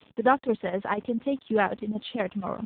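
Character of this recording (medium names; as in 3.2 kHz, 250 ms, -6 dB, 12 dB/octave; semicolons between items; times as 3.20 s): chopped level 4.1 Hz, depth 60%, duty 85%; a quantiser's noise floor 8-bit, dither none; AMR-NB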